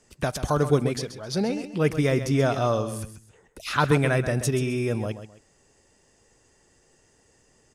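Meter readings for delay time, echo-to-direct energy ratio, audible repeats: 0.132 s, -10.5 dB, 2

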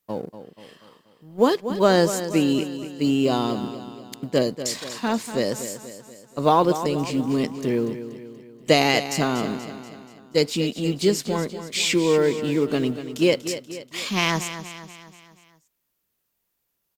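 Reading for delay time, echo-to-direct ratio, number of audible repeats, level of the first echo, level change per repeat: 0.24 s, -10.0 dB, 5, -11.5 dB, -6.0 dB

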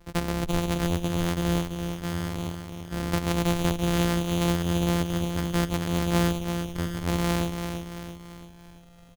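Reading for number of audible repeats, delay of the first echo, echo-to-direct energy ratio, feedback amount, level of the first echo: 5, 0.337 s, -6.0 dB, 49%, -7.0 dB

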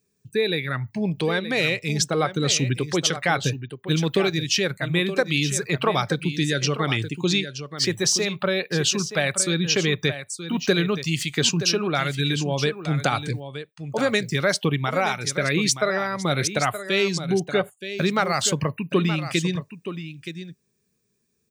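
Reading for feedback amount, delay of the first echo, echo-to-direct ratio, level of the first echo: no steady repeat, 0.923 s, -11.0 dB, -11.0 dB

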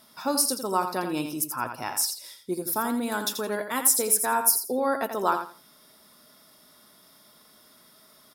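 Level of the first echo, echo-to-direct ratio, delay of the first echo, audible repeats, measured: -8.0 dB, -8.0 dB, 84 ms, 2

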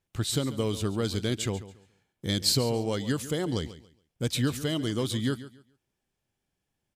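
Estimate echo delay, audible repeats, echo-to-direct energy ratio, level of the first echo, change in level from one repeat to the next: 0.14 s, 2, -14.5 dB, -15.0 dB, -12.5 dB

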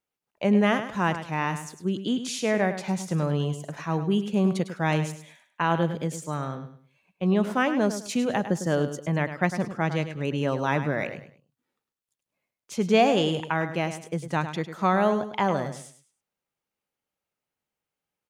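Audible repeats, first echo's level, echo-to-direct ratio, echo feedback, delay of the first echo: 3, -10.5 dB, -10.0 dB, 28%, 0.103 s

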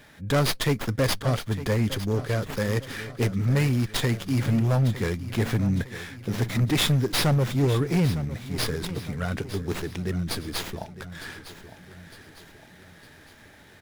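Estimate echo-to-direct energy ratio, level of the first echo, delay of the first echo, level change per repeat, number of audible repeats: -13.0 dB, -14.0 dB, 0.907 s, -6.5 dB, 4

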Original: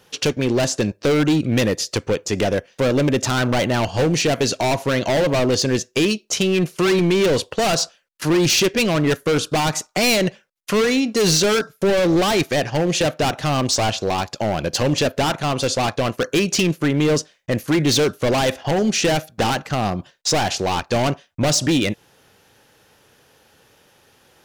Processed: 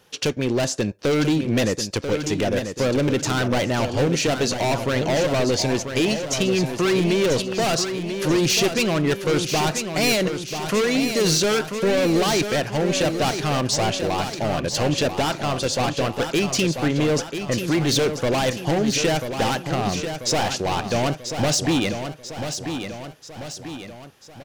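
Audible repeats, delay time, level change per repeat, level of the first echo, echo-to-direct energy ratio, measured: 4, 0.989 s, -5.5 dB, -8.0 dB, -6.5 dB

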